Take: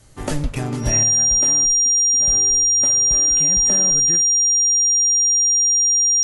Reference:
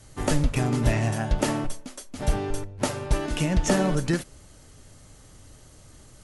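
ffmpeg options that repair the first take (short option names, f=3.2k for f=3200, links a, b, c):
-af "bandreject=f=5.7k:w=30,asetnsamples=n=441:p=0,asendcmd='1.03 volume volume 7dB',volume=0dB"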